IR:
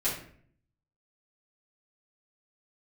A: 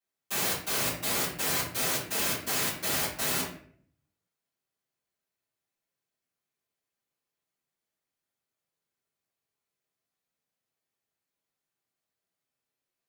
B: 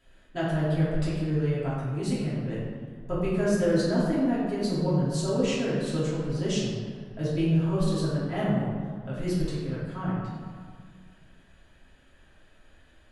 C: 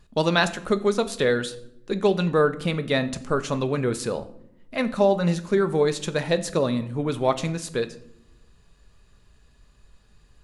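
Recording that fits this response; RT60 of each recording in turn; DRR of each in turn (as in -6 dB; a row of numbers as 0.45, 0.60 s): A; 0.55 s, 2.0 s, not exponential; -11.5, -10.0, 9.5 dB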